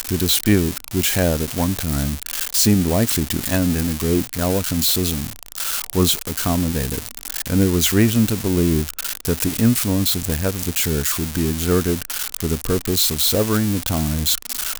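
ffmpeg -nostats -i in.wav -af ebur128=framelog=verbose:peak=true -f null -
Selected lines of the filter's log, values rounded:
Integrated loudness:
  I:         -19.2 LUFS
  Threshold: -29.2 LUFS
Loudness range:
  LRA:         1.7 LU
  Threshold: -39.3 LUFS
  LRA low:   -20.1 LUFS
  LRA high:  -18.4 LUFS
True peak:
  Peak:       -3.5 dBFS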